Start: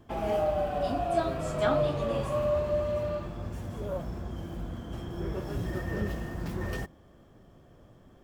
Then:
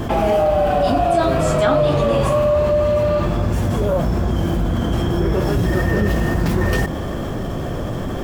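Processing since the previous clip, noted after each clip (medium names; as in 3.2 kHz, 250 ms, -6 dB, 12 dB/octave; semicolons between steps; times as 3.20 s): level flattener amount 70%; trim +8.5 dB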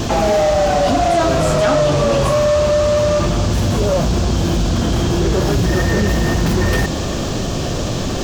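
in parallel at -6 dB: wavefolder -16 dBFS; on the sum: band noise 2.4–7.1 kHz -32 dBFS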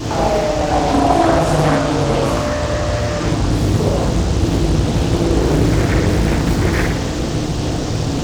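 FDN reverb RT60 1 s, low-frequency decay 1.35×, high-frequency decay 0.75×, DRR -7 dB; loudspeaker Doppler distortion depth 0.8 ms; trim -8.5 dB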